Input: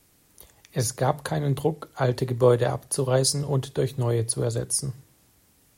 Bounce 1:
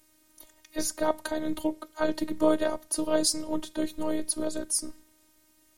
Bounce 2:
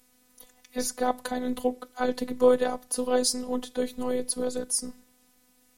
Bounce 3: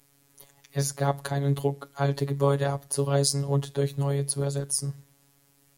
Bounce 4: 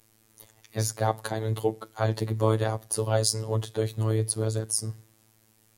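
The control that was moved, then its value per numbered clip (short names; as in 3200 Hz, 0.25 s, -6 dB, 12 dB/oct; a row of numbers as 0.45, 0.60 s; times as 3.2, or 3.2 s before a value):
robotiser, frequency: 310, 250, 140, 110 Hz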